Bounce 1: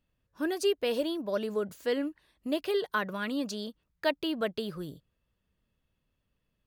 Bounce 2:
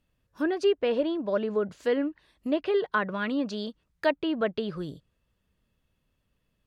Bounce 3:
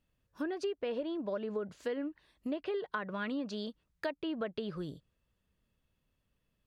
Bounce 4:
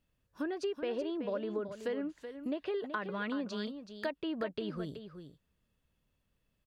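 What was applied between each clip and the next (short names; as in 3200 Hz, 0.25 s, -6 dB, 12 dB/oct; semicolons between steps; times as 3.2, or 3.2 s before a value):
treble ducked by the level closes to 2300 Hz, closed at -28 dBFS; gain +4 dB
compressor 6:1, threshold -28 dBFS, peak gain reduction 9.5 dB; gain -4.5 dB
echo 0.377 s -9.5 dB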